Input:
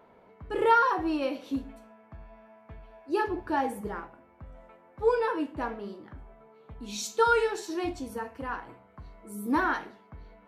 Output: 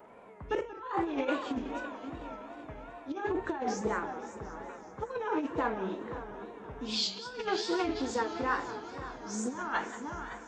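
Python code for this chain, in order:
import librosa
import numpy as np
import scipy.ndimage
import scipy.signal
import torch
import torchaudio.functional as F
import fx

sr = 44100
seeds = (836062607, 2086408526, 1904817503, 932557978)

y = fx.freq_compress(x, sr, knee_hz=2400.0, ratio=1.5)
y = fx.echo_feedback(y, sr, ms=517, feedback_pct=46, wet_db=-19.0)
y = fx.over_compress(y, sr, threshold_db=-31.0, ratio=-0.5)
y = fx.tilt_eq(y, sr, slope=-2.5)
y = fx.echo_heads(y, sr, ms=188, heads='first and third', feedback_pct=59, wet_db=-15)
y = fx.wow_flutter(y, sr, seeds[0], rate_hz=2.1, depth_cents=110.0)
y = fx.riaa(y, sr, side='recording')
y = fx.doppler_dist(y, sr, depth_ms=0.11)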